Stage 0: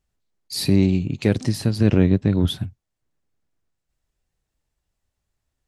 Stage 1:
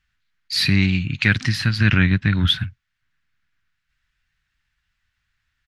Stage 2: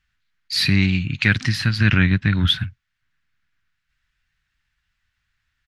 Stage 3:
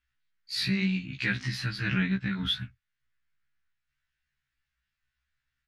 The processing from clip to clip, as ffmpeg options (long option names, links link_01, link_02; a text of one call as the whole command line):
ffmpeg -i in.wav -af "firequalizer=gain_entry='entry(130,0);entry(450,-17);entry(1500,15);entry(8200,-7)':delay=0.05:min_phase=1,volume=2dB" out.wav
ffmpeg -i in.wav -af anull out.wav
ffmpeg -i in.wav -af "flanger=delay=3.4:depth=4.7:regen=-73:speed=1.9:shape=triangular,afftfilt=real='re*1.73*eq(mod(b,3),0)':imag='im*1.73*eq(mod(b,3),0)':win_size=2048:overlap=0.75,volume=-3.5dB" out.wav